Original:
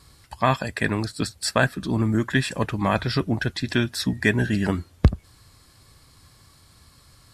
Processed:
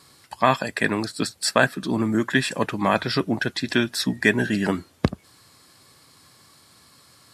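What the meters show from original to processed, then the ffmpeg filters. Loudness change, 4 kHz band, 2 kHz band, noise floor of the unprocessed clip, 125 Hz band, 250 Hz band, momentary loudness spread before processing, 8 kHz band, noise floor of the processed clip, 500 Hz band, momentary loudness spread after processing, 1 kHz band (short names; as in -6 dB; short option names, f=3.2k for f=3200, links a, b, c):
+1.0 dB, +2.5 dB, +2.5 dB, -55 dBFS, -5.5 dB, +1.0 dB, 5 LU, +2.5 dB, -55 dBFS, +2.5 dB, 6 LU, +2.5 dB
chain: -af "highpass=190,volume=2.5dB"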